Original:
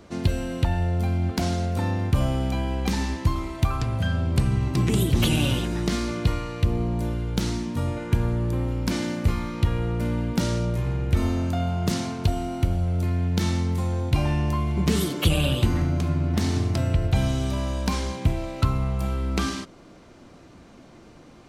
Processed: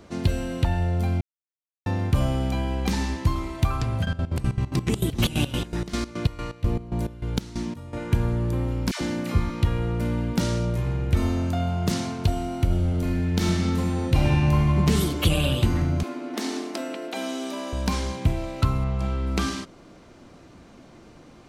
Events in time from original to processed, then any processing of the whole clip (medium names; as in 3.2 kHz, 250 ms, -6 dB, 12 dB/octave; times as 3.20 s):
1.21–1.86 s: mute
4.04–7.95 s: square tremolo 8.6 Hz -> 2.5 Hz
8.91–9.50 s: phase dispersion lows, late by 100 ms, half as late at 730 Hz
12.65–14.77 s: reverb throw, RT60 2.4 s, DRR -0.5 dB
16.03–17.73 s: steep high-pass 240 Hz 48 dB/octave
18.84–19.27 s: low-pass 6 kHz